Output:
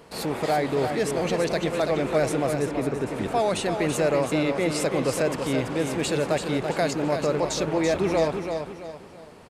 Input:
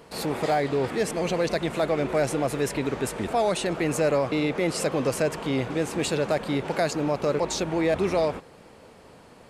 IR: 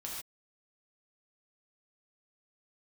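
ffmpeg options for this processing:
-filter_complex "[0:a]asplit=3[s0][s1][s2];[s0]afade=t=out:st=2.53:d=0.02[s3];[s1]lowpass=f=1300:p=1,afade=t=in:st=2.53:d=0.02,afade=t=out:st=3.11:d=0.02[s4];[s2]afade=t=in:st=3.11:d=0.02[s5];[s3][s4][s5]amix=inputs=3:normalize=0,aecho=1:1:334|668|1002|1336:0.473|0.175|0.0648|0.024"

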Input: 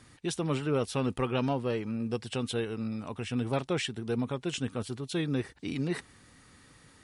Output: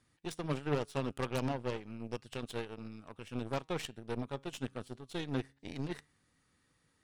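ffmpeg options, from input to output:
-af "flanger=delay=5.9:depth=2.1:regen=89:speed=0.3:shape=triangular,aeval=exprs='0.0891*(cos(1*acos(clip(val(0)/0.0891,-1,1)))-cos(1*PI/2))+0.0282*(cos(4*acos(clip(val(0)/0.0891,-1,1)))-cos(4*PI/2))+0.0355*(cos(6*acos(clip(val(0)/0.0891,-1,1)))-cos(6*PI/2))+0.00891*(cos(7*acos(clip(val(0)/0.0891,-1,1)))-cos(7*PI/2))+0.01*(cos(8*acos(clip(val(0)/0.0891,-1,1)))-cos(8*PI/2))':c=same,volume=0.841"

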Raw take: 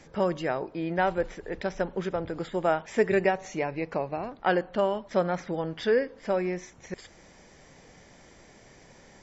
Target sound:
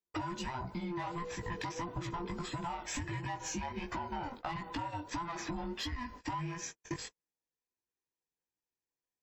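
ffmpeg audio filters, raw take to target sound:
-af "afftfilt=real='real(if(between(b,1,1008),(2*floor((b-1)/24)+1)*24-b,b),0)':imag='imag(if(between(b,1,1008),(2*floor((b-1)/24)+1)*24-b,b),0)*if(between(b,1,1008),-1,1)':win_size=2048:overlap=0.75,alimiter=limit=0.075:level=0:latency=1:release=56,agate=range=0.00141:threshold=0.00631:ratio=16:detection=peak,aemphasis=mode=production:type=50kf,asoftclip=type=tanh:threshold=0.0447,flanger=delay=16:depth=4.5:speed=1.5,acompressor=threshold=0.00398:ratio=10,volume=3.98"

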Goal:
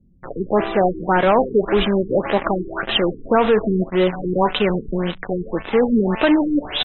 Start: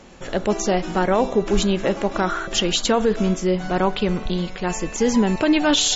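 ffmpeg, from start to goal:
-filter_complex "[0:a]asplit=2[s0][s1];[s1]highpass=f=720:p=1,volume=5.01,asoftclip=type=tanh:threshold=0.422[s2];[s0][s2]amix=inputs=2:normalize=0,lowpass=f=3400:p=1,volume=0.501,atempo=0.87,acrossover=split=180[s3][s4];[s4]acrusher=bits=3:mix=0:aa=0.5[s5];[s3][s5]amix=inputs=2:normalize=0,afftfilt=real='re*lt(b*sr/1024,450*pow(4100/450,0.5+0.5*sin(2*PI*1.8*pts/sr)))':imag='im*lt(b*sr/1024,450*pow(4100/450,0.5+0.5*sin(2*PI*1.8*pts/sr)))':win_size=1024:overlap=0.75,volume=1.19"

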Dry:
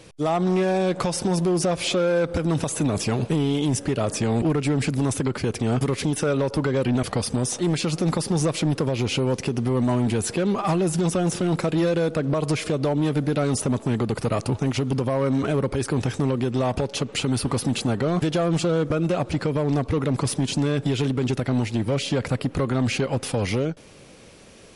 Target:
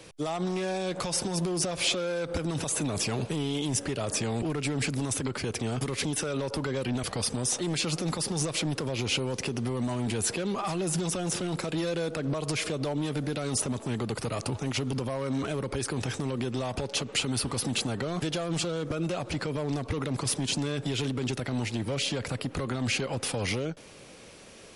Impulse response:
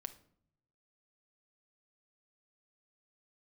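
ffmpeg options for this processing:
-filter_complex "[0:a]lowshelf=f=320:g=-5.5,acrossover=split=100|3000[s0][s1][s2];[s1]alimiter=limit=0.0668:level=0:latency=1:release=57[s3];[s0][s3][s2]amix=inputs=3:normalize=0"

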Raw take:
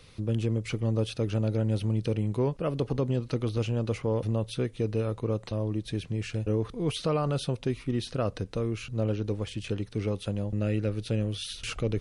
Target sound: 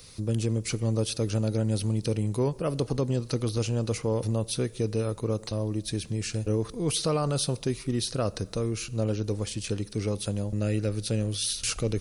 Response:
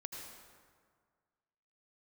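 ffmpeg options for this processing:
-filter_complex "[0:a]asplit=2[s0][s1];[1:a]atrim=start_sample=2205,asetrate=70560,aresample=44100[s2];[s1][s2]afir=irnorm=-1:irlink=0,volume=0.251[s3];[s0][s3]amix=inputs=2:normalize=0,aexciter=amount=4.4:drive=3.5:freq=4300"

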